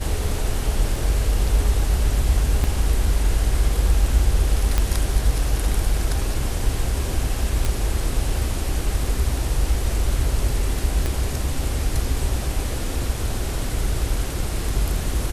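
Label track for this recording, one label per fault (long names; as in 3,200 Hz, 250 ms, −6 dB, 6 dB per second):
0.960000	0.960000	drop-out 2.1 ms
2.640000	2.640000	drop-out 2.2 ms
4.780000	4.780000	click −6 dBFS
7.650000	7.650000	click
11.060000	11.060000	click −11 dBFS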